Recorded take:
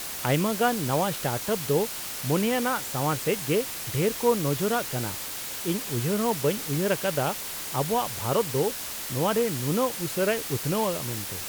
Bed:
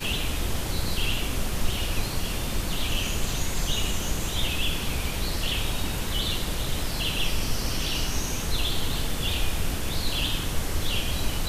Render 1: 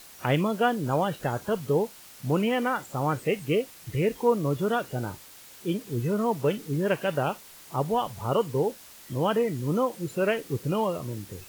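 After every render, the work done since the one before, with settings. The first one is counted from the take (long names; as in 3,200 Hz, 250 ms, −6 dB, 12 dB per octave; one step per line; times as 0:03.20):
noise reduction from a noise print 14 dB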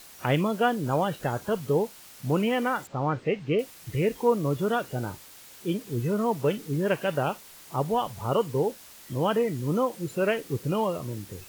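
0:02.87–0:03.59: high-frequency loss of the air 170 metres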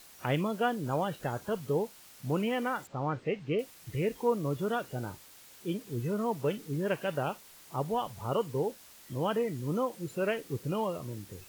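level −5.5 dB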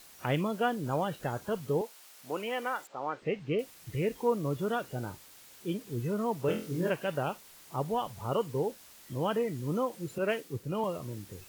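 0:01.81–0:03.22: high-pass filter 430 Hz
0:06.46–0:06.90: flutter between parallel walls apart 4 metres, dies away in 0.37 s
0:10.18–0:10.84: multiband upward and downward expander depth 70%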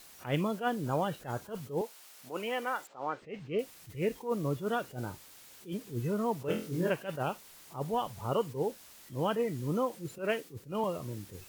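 level that may rise only so fast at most 200 dB per second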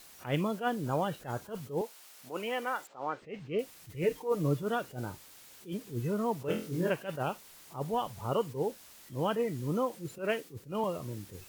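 0:04.03–0:04.63: comb filter 6.6 ms, depth 66%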